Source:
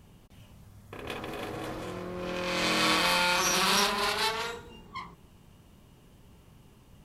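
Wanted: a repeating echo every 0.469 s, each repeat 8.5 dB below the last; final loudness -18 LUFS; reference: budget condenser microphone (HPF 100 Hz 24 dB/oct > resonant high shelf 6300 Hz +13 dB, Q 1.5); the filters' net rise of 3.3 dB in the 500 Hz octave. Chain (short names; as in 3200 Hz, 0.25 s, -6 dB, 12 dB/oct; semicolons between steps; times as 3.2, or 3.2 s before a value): HPF 100 Hz 24 dB/oct; bell 500 Hz +4 dB; resonant high shelf 6300 Hz +13 dB, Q 1.5; feedback echo 0.469 s, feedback 38%, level -8.5 dB; gain +6 dB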